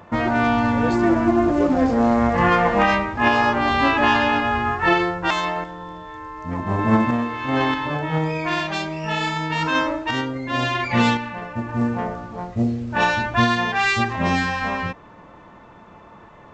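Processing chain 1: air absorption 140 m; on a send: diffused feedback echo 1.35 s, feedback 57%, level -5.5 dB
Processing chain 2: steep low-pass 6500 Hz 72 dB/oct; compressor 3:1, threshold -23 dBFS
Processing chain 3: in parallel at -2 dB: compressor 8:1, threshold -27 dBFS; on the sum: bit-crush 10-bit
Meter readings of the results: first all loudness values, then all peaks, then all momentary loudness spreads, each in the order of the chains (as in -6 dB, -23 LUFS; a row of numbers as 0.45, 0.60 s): -20.5, -26.0, -18.5 LUFS; -3.5, -11.0, -2.5 dBFS; 8, 8, 9 LU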